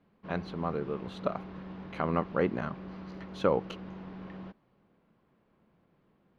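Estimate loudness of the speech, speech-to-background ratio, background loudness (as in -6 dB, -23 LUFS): -33.5 LUFS, 11.0 dB, -44.5 LUFS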